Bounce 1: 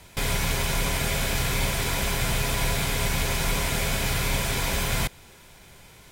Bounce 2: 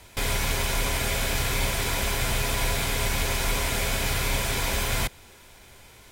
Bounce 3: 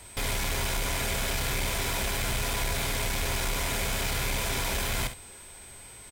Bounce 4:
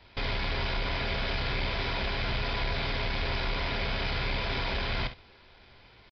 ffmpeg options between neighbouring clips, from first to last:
ffmpeg -i in.wav -af "equalizer=frequency=160:width=5:gain=-13" out.wav
ffmpeg -i in.wav -af "asoftclip=type=tanh:threshold=-24.5dB,aeval=exprs='val(0)+0.00316*sin(2*PI*8200*n/s)':channel_layout=same,aecho=1:1:50|66:0.224|0.224" out.wav
ffmpeg -i in.wav -af "aeval=exprs='sgn(val(0))*max(abs(val(0))-0.00282,0)':channel_layout=same,aresample=11025,aresample=44100" out.wav

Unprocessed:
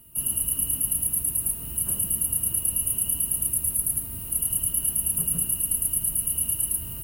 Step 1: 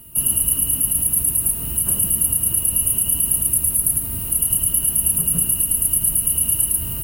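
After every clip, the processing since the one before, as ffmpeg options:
ffmpeg -i in.wav -af "alimiter=limit=-14.5dB:level=0:latency=1:release=71,volume=9dB" out.wav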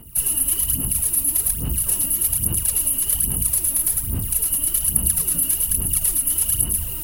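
ffmpeg -i in.wav -af "aphaser=in_gain=1:out_gain=1:delay=3.6:decay=0.73:speed=1.2:type=sinusoidal,volume=-5dB" out.wav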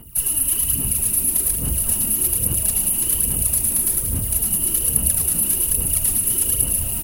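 ffmpeg -i in.wav -filter_complex "[0:a]areverse,acompressor=mode=upward:threshold=-23dB:ratio=2.5,areverse,asplit=9[link_01][link_02][link_03][link_04][link_05][link_06][link_07][link_08][link_09];[link_02]adelay=183,afreqshift=-140,volume=-8dB[link_10];[link_03]adelay=366,afreqshift=-280,volume=-12dB[link_11];[link_04]adelay=549,afreqshift=-420,volume=-16dB[link_12];[link_05]adelay=732,afreqshift=-560,volume=-20dB[link_13];[link_06]adelay=915,afreqshift=-700,volume=-24.1dB[link_14];[link_07]adelay=1098,afreqshift=-840,volume=-28.1dB[link_15];[link_08]adelay=1281,afreqshift=-980,volume=-32.1dB[link_16];[link_09]adelay=1464,afreqshift=-1120,volume=-36.1dB[link_17];[link_01][link_10][link_11][link_12][link_13][link_14][link_15][link_16][link_17]amix=inputs=9:normalize=0" out.wav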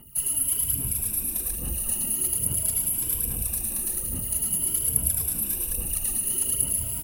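ffmpeg -i in.wav -af "afftfilt=real='re*pow(10,9/40*sin(2*PI*(1.7*log(max(b,1)*sr/1024/100)/log(2)-(0.47)*(pts-256)/sr)))':imag='im*pow(10,9/40*sin(2*PI*(1.7*log(max(b,1)*sr/1024/100)/log(2)-(0.47)*(pts-256)/sr)))':win_size=1024:overlap=0.75,volume=-8dB" out.wav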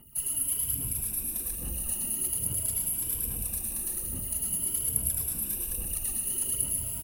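ffmpeg -i in.wav -af "aecho=1:1:125:0.355,volume=-5dB" out.wav

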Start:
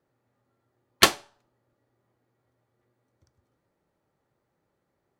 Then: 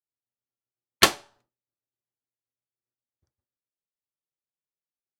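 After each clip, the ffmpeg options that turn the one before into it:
ffmpeg -i in.wav -af "agate=range=-33dB:threshold=-56dB:ratio=3:detection=peak" out.wav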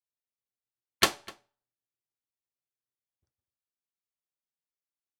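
ffmpeg -i in.wav -filter_complex "[0:a]asplit=2[link_01][link_02];[link_02]adelay=250.7,volume=-21dB,highshelf=frequency=4000:gain=-5.64[link_03];[link_01][link_03]amix=inputs=2:normalize=0,volume=-6dB" out.wav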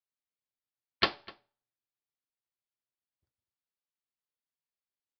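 ffmpeg -i in.wav -af "aresample=11025,aresample=44100,volume=-3dB" out.wav

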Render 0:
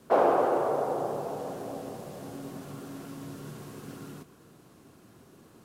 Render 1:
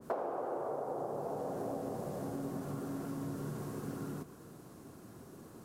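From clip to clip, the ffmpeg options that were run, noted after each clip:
ffmpeg -i in.wav -af "equalizer=frequency=2900:width_type=o:width=1.4:gain=-7.5,acompressor=threshold=-37dB:ratio=16,adynamicequalizer=threshold=0.00158:dfrequency=2000:dqfactor=0.7:tfrequency=2000:tqfactor=0.7:attack=5:release=100:ratio=0.375:range=2:mode=cutabove:tftype=highshelf,volume=3dB" out.wav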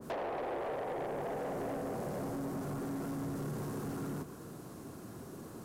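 ffmpeg -i in.wav -af "asoftclip=type=tanh:threshold=-39.5dB,volume=5.5dB" out.wav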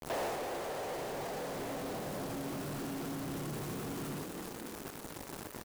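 ffmpeg -i in.wav -filter_complex "[0:a]acrusher=bits=6:mix=0:aa=0.000001,asplit=9[link_01][link_02][link_03][link_04][link_05][link_06][link_07][link_08][link_09];[link_02]adelay=255,afreqshift=34,volume=-9dB[link_10];[link_03]adelay=510,afreqshift=68,volume=-13dB[link_11];[link_04]adelay=765,afreqshift=102,volume=-17dB[link_12];[link_05]adelay=1020,afreqshift=136,volume=-21dB[link_13];[link_06]adelay=1275,afreqshift=170,volume=-25.1dB[link_14];[link_07]adelay=1530,afreqshift=204,volume=-29.1dB[link_15];[link_08]adelay=1785,afreqshift=238,volume=-33.1dB[link_16];[link_09]adelay=2040,afreqshift=272,volume=-37.1dB[link_17];[link_01][link_10][link_11][link_12][link_13][link_14][link_15][link_16][link_17]amix=inputs=9:normalize=0,alimiter=level_in=15.5dB:limit=-24dB:level=0:latency=1:release=20,volume=-15.5dB,volume=6dB" out.wav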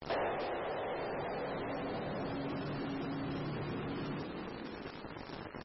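ffmpeg -i in.wav -af "volume=1dB" -ar 24000 -c:a libmp3lame -b:a 16k out.mp3

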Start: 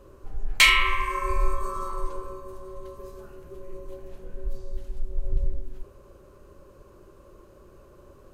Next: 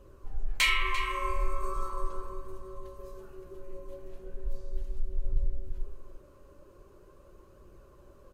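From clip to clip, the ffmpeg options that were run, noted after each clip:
ffmpeg -i in.wav -filter_complex "[0:a]flanger=delay=0.3:depth=3.5:regen=71:speed=0.39:shape=triangular,asplit=2[link_01][link_02];[link_02]alimiter=limit=-20dB:level=0:latency=1:release=153,volume=2.5dB[link_03];[link_01][link_03]amix=inputs=2:normalize=0,asplit=2[link_04][link_05];[link_05]adelay=344,volume=-9dB,highshelf=frequency=4000:gain=-7.74[link_06];[link_04][link_06]amix=inputs=2:normalize=0,volume=-8dB" out.wav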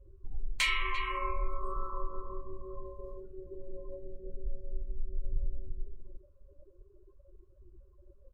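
ffmpeg -i in.wav -af "afftdn=noise_reduction=26:noise_floor=-43,acompressor=threshold=-37dB:ratio=1.5,volume=1.5dB" out.wav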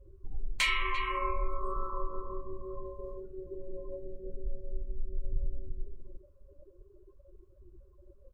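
ffmpeg -i in.wav -af "equalizer=frequency=370:width=0.31:gain=3.5" out.wav

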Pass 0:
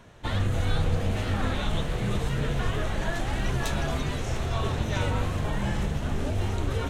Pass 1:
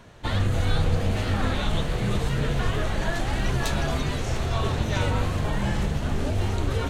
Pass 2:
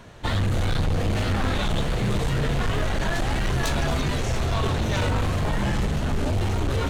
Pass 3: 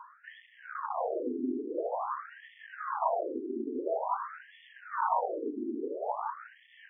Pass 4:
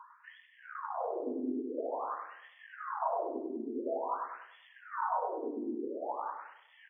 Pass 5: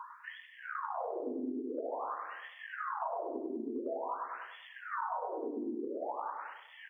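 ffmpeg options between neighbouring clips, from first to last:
ffmpeg -i in.wav -af "equalizer=frequency=4500:width=6.4:gain=4.5,volume=2.5dB" out.wav
ffmpeg -i in.wav -af "volume=23dB,asoftclip=hard,volume=-23dB,volume=3.5dB" out.wav
ffmpeg -i in.wav -af "highshelf=frequency=1600:width_type=q:width=3:gain=-14,afftfilt=real='re*between(b*sr/4096,220,8400)':imag='im*between(b*sr/4096,220,8400)':win_size=4096:overlap=0.75,afftfilt=real='re*between(b*sr/1024,290*pow(2500/290,0.5+0.5*sin(2*PI*0.48*pts/sr))/1.41,290*pow(2500/290,0.5+0.5*sin(2*PI*0.48*pts/sr))*1.41)':imag='im*between(b*sr/1024,290*pow(2500/290,0.5+0.5*sin(2*PI*0.48*pts/sr))/1.41,290*pow(2500/290,0.5+0.5*sin(2*PI*0.48*pts/sr))*1.41)':win_size=1024:overlap=0.75" out.wav
ffmpeg -i in.wav -filter_complex "[0:a]highpass=66,asplit=2[link_01][link_02];[link_02]adelay=98,lowpass=frequency=1200:poles=1,volume=-5.5dB,asplit=2[link_03][link_04];[link_04]adelay=98,lowpass=frequency=1200:poles=1,volume=0.48,asplit=2[link_05][link_06];[link_06]adelay=98,lowpass=frequency=1200:poles=1,volume=0.48,asplit=2[link_07][link_08];[link_08]adelay=98,lowpass=frequency=1200:poles=1,volume=0.48,asplit=2[link_09][link_10];[link_10]adelay=98,lowpass=frequency=1200:poles=1,volume=0.48,asplit=2[link_11][link_12];[link_12]adelay=98,lowpass=frequency=1200:poles=1,volume=0.48[link_13];[link_03][link_05][link_07][link_09][link_11][link_13]amix=inputs=6:normalize=0[link_14];[link_01][link_14]amix=inputs=2:normalize=0,volume=-4dB" out.wav
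ffmpeg -i in.wav -af "acompressor=threshold=-43dB:ratio=4,volume=7dB" out.wav

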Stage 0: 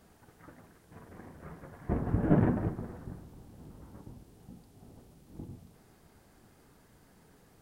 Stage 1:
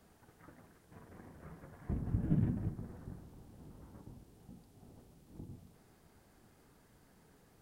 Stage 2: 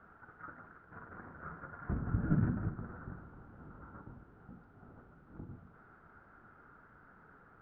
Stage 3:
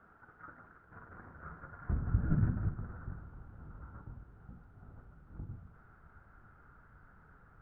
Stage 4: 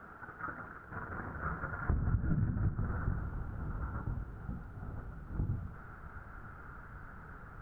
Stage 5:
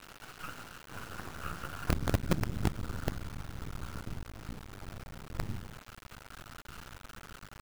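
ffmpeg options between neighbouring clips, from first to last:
ffmpeg -i in.wav -filter_complex "[0:a]acrossover=split=250|3000[link_01][link_02][link_03];[link_02]acompressor=threshold=-51dB:ratio=3[link_04];[link_01][link_04][link_03]amix=inputs=3:normalize=0,volume=-4dB" out.wav
ffmpeg -i in.wav -af "lowpass=frequency=1400:width_type=q:width=10,volume=1dB" out.wav
ffmpeg -i in.wav -af "asubboost=boost=4:cutoff=130,volume=-2.5dB" out.wav
ffmpeg -i in.wav -af "acompressor=threshold=-38dB:ratio=12,volume=10.5dB" out.wav
ffmpeg -i in.wav -af "acrusher=bits=5:dc=4:mix=0:aa=0.000001,volume=1.5dB" out.wav

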